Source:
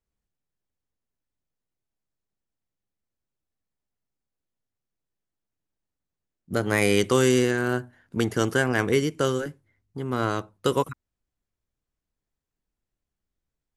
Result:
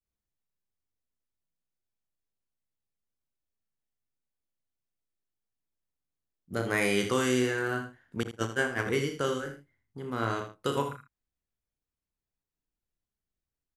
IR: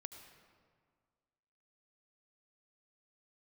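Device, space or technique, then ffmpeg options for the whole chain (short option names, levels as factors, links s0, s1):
slapback doubling: -filter_complex "[0:a]adynamicequalizer=threshold=0.0141:dfrequency=1700:dqfactor=0.73:tfrequency=1700:tqfactor=0.73:attack=5:release=100:ratio=0.375:range=2:mode=boostabove:tftype=bell,asplit=3[s0][s1][s2];[s1]adelay=35,volume=0.447[s3];[s2]adelay=63,volume=0.299[s4];[s0][s3][s4]amix=inputs=3:normalize=0,asettb=1/sr,asplit=3[s5][s6][s7];[s5]atrim=end=8.234[s8];[s6]atrim=start=8.23:end=8.86,asetpts=PTS-STARTPTS,afade=t=in:d=0.004:c=qsin,afade=t=out:st=0.626:d=0.004:c=qsin,agate=range=0.0316:threshold=0.112:ratio=16:detection=peak[s9];[s7]atrim=start=8.856[s10];[s8][s9]acrossfade=d=0.004:c1=hsin:c2=qsin[s11];[s11][s10]acrossfade=d=0.004:c1=qsin:c2=hsin,aecho=1:1:80:0.299,volume=0.398"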